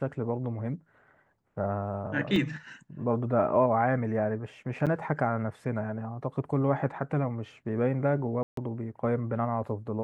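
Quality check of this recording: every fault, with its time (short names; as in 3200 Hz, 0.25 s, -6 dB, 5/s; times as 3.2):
2.36 gap 2 ms
4.86–4.87 gap 7.2 ms
8.43–8.57 gap 0.143 s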